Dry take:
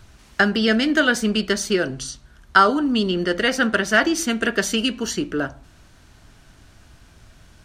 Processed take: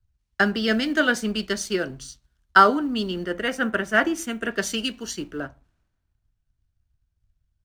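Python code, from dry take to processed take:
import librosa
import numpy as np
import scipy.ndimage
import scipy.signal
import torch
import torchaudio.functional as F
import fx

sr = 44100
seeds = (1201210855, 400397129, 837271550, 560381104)

y = fx.law_mismatch(x, sr, coded='A')
y = fx.peak_eq(y, sr, hz=4500.0, db=-10.0, octaves=0.65, at=(3.26, 4.51))
y = fx.band_widen(y, sr, depth_pct=70)
y = y * 10.0 ** (-4.5 / 20.0)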